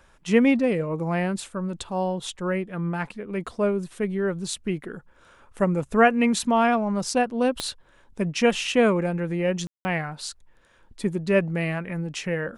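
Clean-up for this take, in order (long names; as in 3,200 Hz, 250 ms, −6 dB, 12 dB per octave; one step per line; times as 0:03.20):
click removal
ambience match 0:09.67–0:09.85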